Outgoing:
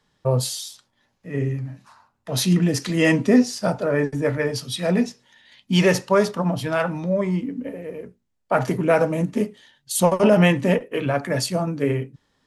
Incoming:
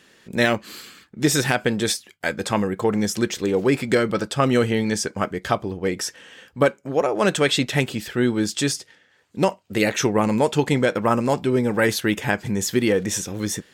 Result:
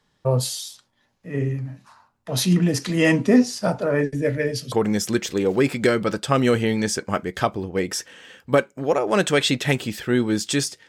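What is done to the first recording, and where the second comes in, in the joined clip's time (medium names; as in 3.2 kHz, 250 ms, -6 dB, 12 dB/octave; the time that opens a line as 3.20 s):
outgoing
4.01–4.72 s: high-order bell 1 kHz -12.5 dB 1.1 oct
4.72 s: go over to incoming from 2.80 s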